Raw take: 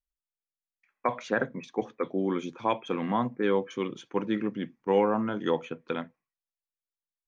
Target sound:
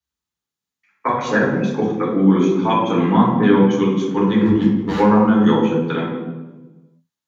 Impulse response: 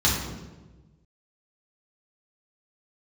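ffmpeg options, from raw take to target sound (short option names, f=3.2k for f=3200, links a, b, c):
-filter_complex "[0:a]highpass=110,asettb=1/sr,asplit=3[a][b][c];[a]atrim=end=4.414[d];[b]atrim=start=4.41:end=5,asetpts=PTS-STARTPTS,afade=t=in:d=0.004:c=qsin,afade=t=out:st=0.586:d=0.004:c=qsin,volume=28.5dB,asoftclip=hard,volume=-28.5dB[e];[c]atrim=start=4.996[f];[d][e]acrossfade=d=0.004:c1=hsin:c2=qsin[g];[g][f]acrossfade=d=0.004:c1=qsin:c2=hsin[h];[1:a]atrim=start_sample=2205[i];[h][i]afir=irnorm=-1:irlink=0,volume=-4.5dB"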